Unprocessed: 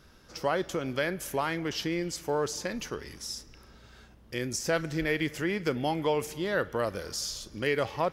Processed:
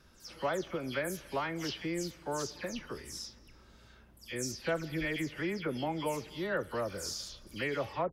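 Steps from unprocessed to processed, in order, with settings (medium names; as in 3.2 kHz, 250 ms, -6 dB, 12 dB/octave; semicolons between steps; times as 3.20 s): delay that grows with frequency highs early, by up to 154 ms; trim -4.5 dB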